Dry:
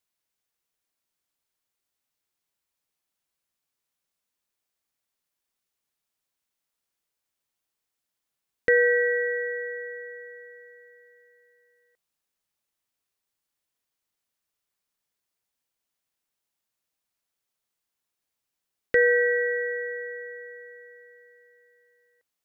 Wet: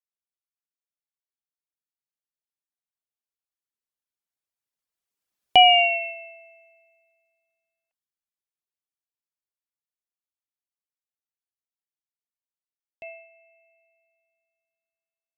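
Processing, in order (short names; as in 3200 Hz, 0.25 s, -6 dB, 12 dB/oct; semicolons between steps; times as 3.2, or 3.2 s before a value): Doppler pass-by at 8.39, 23 m/s, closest 8.8 m; wide varispeed 1.46×; reverb removal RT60 0.86 s; gain +8.5 dB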